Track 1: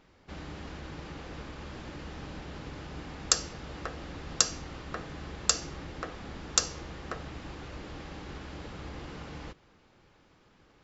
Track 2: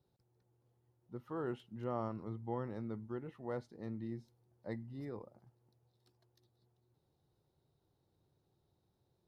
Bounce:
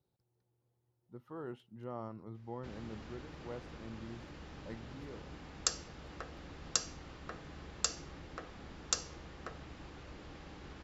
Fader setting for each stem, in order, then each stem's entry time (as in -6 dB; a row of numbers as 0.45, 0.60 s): -8.0, -4.5 dB; 2.35, 0.00 s